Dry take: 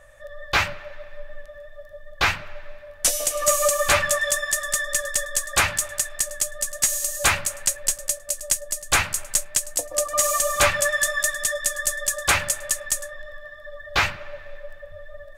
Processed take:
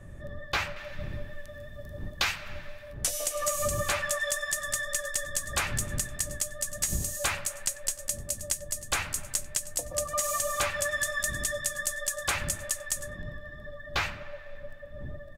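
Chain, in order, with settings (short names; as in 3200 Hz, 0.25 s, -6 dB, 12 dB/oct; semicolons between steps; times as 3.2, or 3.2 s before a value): wind noise 110 Hz -35 dBFS; 0.76–2.93 high shelf 2400 Hz +11.5 dB; compressor 6:1, threshold -20 dBFS, peak gain reduction 9 dB; outdoor echo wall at 16 m, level -22 dB; gain -5 dB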